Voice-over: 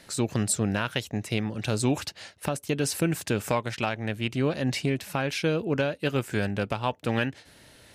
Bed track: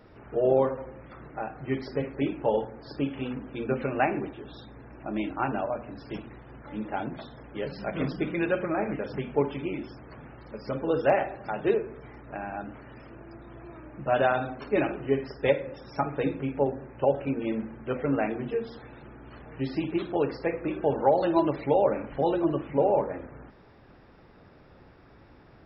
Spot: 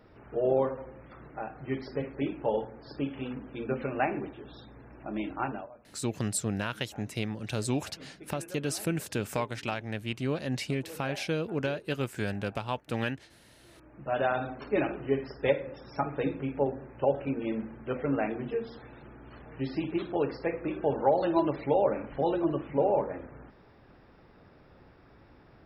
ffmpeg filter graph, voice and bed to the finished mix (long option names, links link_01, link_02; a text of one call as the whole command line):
ffmpeg -i stem1.wav -i stem2.wav -filter_complex "[0:a]adelay=5850,volume=-5dB[link_01];[1:a]volume=14dB,afade=type=out:start_time=5.44:duration=0.26:silence=0.149624,afade=type=in:start_time=13.57:duration=0.88:silence=0.133352[link_02];[link_01][link_02]amix=inputs=2:normalize=0" out.wav